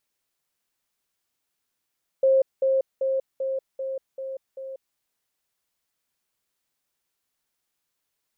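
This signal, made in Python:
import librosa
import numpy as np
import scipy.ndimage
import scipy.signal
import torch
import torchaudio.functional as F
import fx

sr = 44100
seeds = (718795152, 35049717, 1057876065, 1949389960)

y = fx.level_ladder(sr, hz=533.0, from_db=-15.0, step_db=-3.0, steps=7, dwell_s=0.19, gap_s=0.2)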